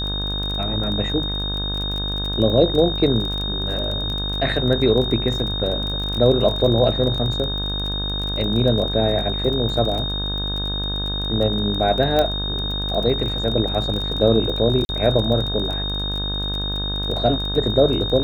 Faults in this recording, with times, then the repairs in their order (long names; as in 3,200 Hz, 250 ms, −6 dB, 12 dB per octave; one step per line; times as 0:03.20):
mains buzz 50 Hz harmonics 34 −27 dBFS
surface crackle 22 per second −25 dBFS
whistle 3,700 Hz −25 dBFS
0:12.19: click −7 dBFS
0:14.85–0:14.89: drop-out 41 ms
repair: click removal
hum removal 50 Hz, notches 34
notch filter 3,700 Hz, Q 30
repair the gap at 0:14.85, 41 ms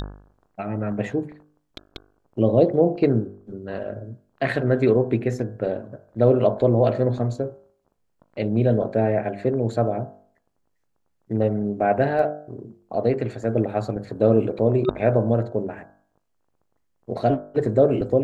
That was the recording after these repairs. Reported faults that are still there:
0:12.19: click